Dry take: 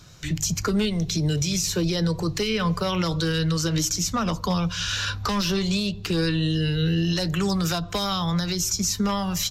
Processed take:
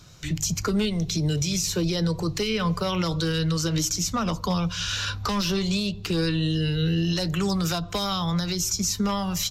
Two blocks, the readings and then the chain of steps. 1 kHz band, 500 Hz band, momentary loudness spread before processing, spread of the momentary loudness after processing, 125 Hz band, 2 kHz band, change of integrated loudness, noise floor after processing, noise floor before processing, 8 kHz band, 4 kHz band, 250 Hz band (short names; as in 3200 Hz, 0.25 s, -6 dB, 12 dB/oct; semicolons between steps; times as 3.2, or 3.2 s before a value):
-1.0 dB, -1.0 dB, 3 LU, 3 LU, -1.0 dB, -2.0 dB, -1.0 dB, -37 dBFS, -36 dBFS, -1.0 dB, -1.0 dB, -1.0 dB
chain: bell 1700 Hz -3 dB 0.28 oct; gain -1 dB